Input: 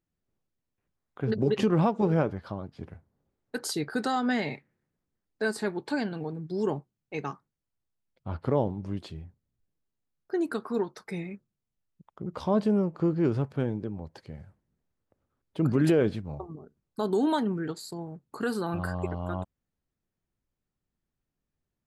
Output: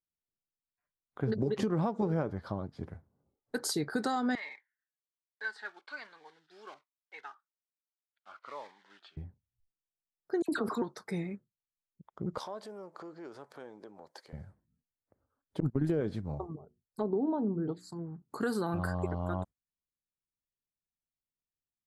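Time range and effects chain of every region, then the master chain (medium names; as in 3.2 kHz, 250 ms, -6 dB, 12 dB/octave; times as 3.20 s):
4.35–9.17 s: block-companded coder 5-bit + Butterworth band-pass 1.9 kHz, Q 0.9 + Shepard-style phaser falling 1.2 Hz
10.42–10.82 s: phase dispersion lows, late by 66 ms, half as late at 1.8 kHz + decay stretcher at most 80 dB/s
12.38–14.33 s: compression 4:1, threshold -34 dBFS + high-pass 560 Hz + treble shelf 5.1 kHz +4 dB
15.60–16.01 s: gate -23 dBFS, range -39 dB + bass shelf 200 Hz +11 dB + tape noise reduction on one side only decoder only
16.56–18.22 s: low-pass that closes with the level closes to 870 Hz, closed at -25.5 dBFS + touch-sensitive phaser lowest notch 210 Hz, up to 2.1 kHz, full sweep at -27.5 dBFS + hum notches 60/120/180/240/300/360 Hz
whole clip: spectral noise reduction 19 dB; peaking EQ 2.7 kHz -9 dB 0.45 oct; compression 6:1, threshold -27 dBFS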